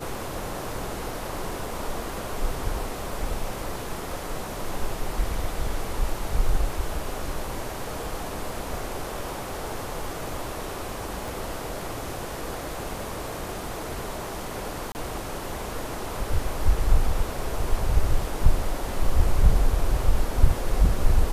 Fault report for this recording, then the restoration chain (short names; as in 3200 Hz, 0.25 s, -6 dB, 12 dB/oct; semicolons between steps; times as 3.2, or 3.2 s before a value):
11.28 pop
14.92–14.95 gap 29 ms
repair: de-click; interpolate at 14.92, 29 ms